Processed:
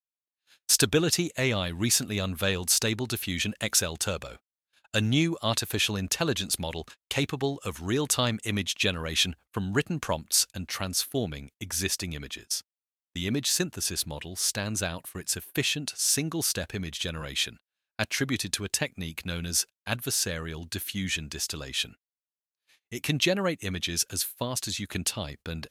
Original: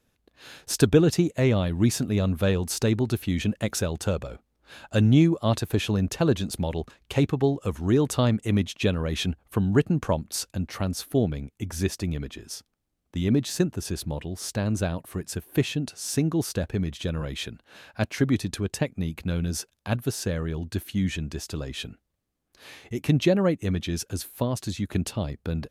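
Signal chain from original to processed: gate -41 dBFS, range -43 dB; tilt shelf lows -8 dB, about 1100 Hz

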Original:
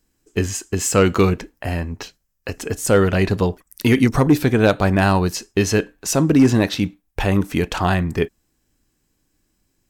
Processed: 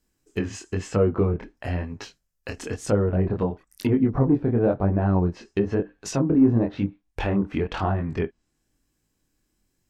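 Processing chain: chorus 1 Hz, delay 19 ms, depth 7.2 ms; treble ducked by the level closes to 750 Hz, closed at -16 dBFS; gain -2 dB

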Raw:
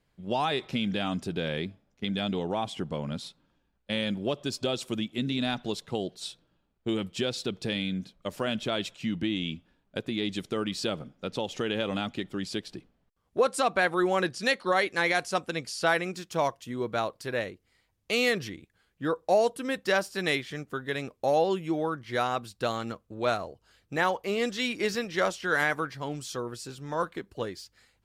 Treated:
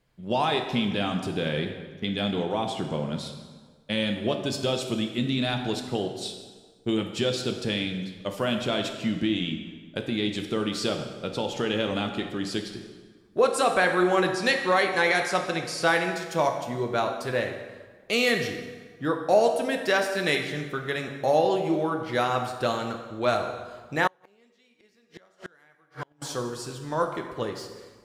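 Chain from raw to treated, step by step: plate-style reverb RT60 1.5 s, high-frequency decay 0.75×, DRR 4 dB; 24.07–26.22 flipped gate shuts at -22 dBFS, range -36 dB; gain +2 dB

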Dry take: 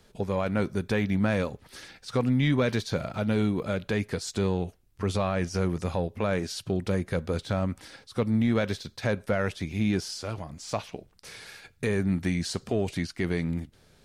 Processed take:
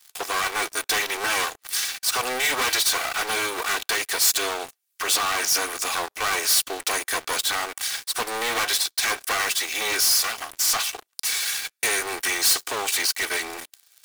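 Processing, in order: minimum comb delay 2.6 ms; HPF 1100 Hz 12 dB/oct; sample leveller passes 5; high shelf 5600 Hz +10.5 dB; mismatched tape noise reduction encoder only

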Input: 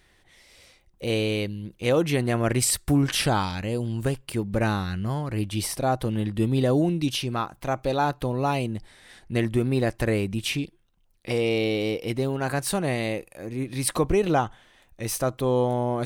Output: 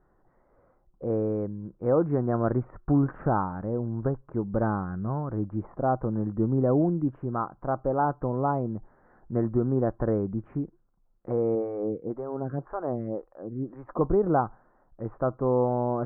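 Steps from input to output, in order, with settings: steep low-pass 1400 Hz 48 dB/oct; bell 76 Hz -12.5 dB 0.51 oct; 11.55–14.01 photocell phaser 1.9 Hz; gain -1 dB

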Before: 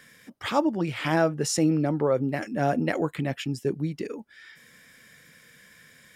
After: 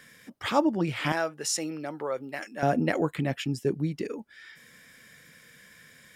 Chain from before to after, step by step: 1.12–2.63 HPF 1200 Hz 6 dB/oct

